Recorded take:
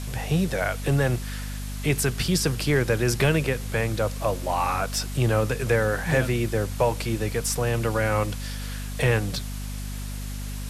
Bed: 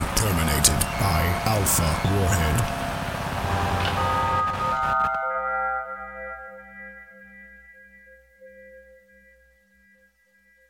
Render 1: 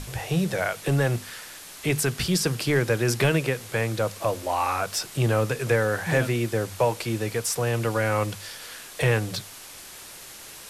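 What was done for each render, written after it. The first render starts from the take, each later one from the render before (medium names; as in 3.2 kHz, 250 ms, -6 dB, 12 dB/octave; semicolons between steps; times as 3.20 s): hum notches 50/100/150/200/250 Hz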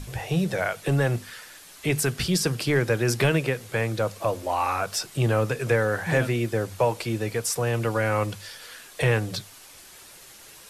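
noise reduction 6 dB, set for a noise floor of -43 dBFS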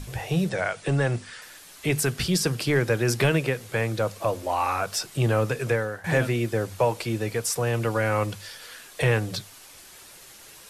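0.49–1.42 s: Chebyshev low-pass 10 kHz, order 10; 5.63–6.04 s: fade out linear, to -16 dB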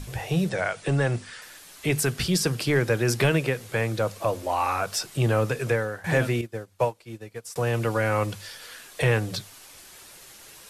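6.41–7.56 s: upward expansion 2.5:1, over -33 dBFS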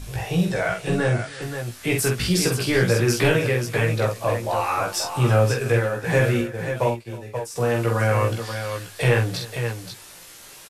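doubling 17 ms -3.5 dB; multi-tap echo 46/319/533 ms -4.5/-20/-7.5 dB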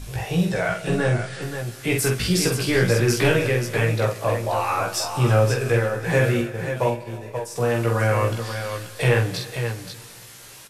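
Schroeder reverb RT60 2.6 s, combs from 27 ms, DRR 14.5 dB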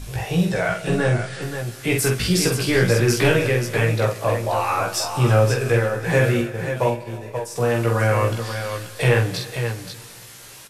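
trim +1.5 dB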